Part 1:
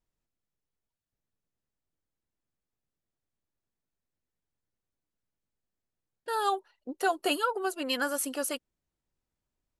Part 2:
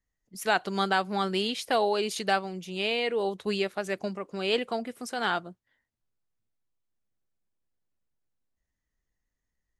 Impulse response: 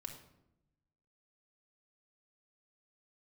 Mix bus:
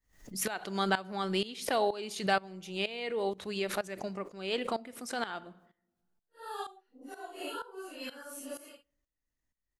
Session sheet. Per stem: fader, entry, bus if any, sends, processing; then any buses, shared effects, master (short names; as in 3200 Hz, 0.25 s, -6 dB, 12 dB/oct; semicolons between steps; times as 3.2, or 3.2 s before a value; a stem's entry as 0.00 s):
-8.5 dB, 0.15 s, send -24 dB, phase scrambler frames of 0.2 s
-3.5 dB, 0.00 s, send -7 dB, backwards sustainer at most 94 dB/s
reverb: on, RT60 0.85 s, pre-delay 3 ms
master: tremolo saw up 2.1 Hz, depth 85%